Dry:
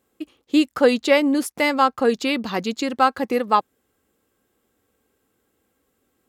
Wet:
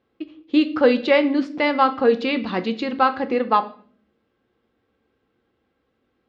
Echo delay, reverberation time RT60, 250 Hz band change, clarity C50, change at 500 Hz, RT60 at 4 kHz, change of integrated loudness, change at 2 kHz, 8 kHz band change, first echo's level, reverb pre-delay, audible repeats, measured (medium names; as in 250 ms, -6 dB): no echo, 0.55 s, 0.0 dB, 15.0 dB, +1.0 dB, 0.45 s, 0.0 dB, -0.5 dB, under -20 dB, no echo, 6 ms, no echo